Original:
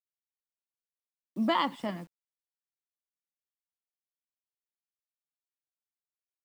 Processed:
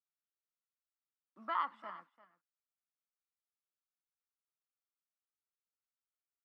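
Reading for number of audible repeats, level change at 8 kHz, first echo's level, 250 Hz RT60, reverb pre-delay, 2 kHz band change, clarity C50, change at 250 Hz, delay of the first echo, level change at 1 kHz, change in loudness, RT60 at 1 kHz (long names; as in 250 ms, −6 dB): 1, can't be measured, −16.5 dB, no reverb audible, no reverb audible, −9.5 dB, no reverb audible, −26.5 dB, 342 ms, −6.0 dB, −9.0 dB, no reverb audible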